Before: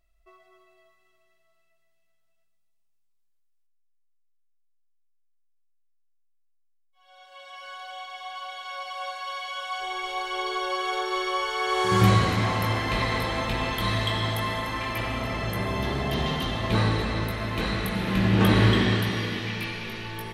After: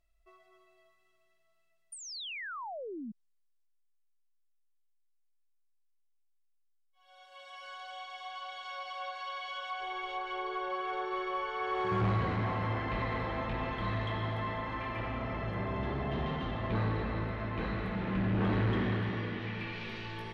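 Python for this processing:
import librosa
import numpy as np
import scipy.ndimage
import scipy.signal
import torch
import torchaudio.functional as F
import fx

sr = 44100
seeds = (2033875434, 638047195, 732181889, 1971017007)

y = 10.0 ** (-19.5 / 20.0) * np.tanh(x / 10.0 ** (-19.5 / 20.0))
y = fx.spec_paint(y, sr, seeds[0], shape='fall', start_s=1.92, length_s=1.2, low_hz=200.0, high_hz=9600.0, level_db=-35.0)
y = fx.env_lowpass_down(y, sr, base_hz=2000.0, full_db=-27.0)
y = F.gain(torch.from_numpy(y), -5.5).numpy()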